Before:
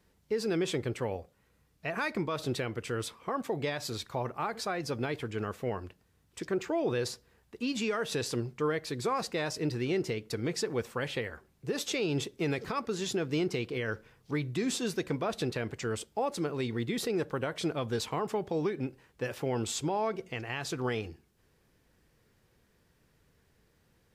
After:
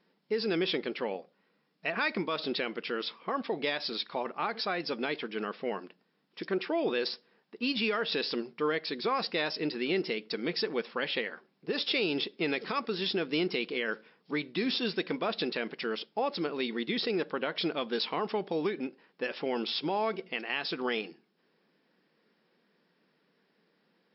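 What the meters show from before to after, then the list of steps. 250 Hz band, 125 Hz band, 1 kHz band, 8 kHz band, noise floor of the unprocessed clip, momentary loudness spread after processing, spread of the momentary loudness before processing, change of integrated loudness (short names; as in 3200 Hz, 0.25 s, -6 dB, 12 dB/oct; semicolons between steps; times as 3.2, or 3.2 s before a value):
0.0 dB, -10.0 dB, +1.0 dB, under -40 dB, -69 dBFS, 6 LU, 6 LU, +1.0 dB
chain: brick-wall FIR band-pass 160–5500 Hz; dynamic EQ 3400 Hz, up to +7 dB, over -52 dBFS, Q 0.75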